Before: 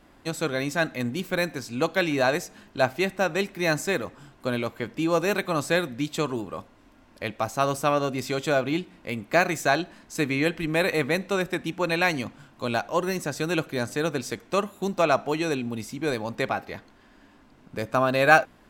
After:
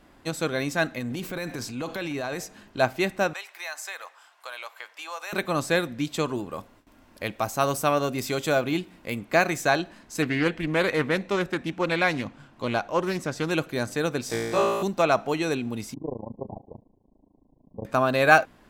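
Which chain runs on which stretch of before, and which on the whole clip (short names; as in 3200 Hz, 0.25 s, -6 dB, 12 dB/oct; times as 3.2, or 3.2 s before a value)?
0.98–2.39 transient shaper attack -6 dB, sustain +5 dB + compressor, threshold -27 dBFS
3.33–5.33 HPF 750 Hz 24 dB/oct + compressor 2.5:1, threshold -34 dBFS
6.51–9.19 high shelf 11000 Hz +11.5 dB + gate with hold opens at -46 dBFS, closes at -52 dBFS
10.22–13.51 high shelf 7400 Hz -7.5 dB + Doppler distortion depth 0.2 ms
14.28–14.83 bell 760 Hz +8 dB 0.84 oct + compressor 1.5:1, threshold -33 dBFS + flutter echo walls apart 3 m, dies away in 1.3 s
15.94–17.85 median filter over 41 samples + brick-wall FIR low-pass 1100 Hz + AM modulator 27 Hz, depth 95%
whole clip: dry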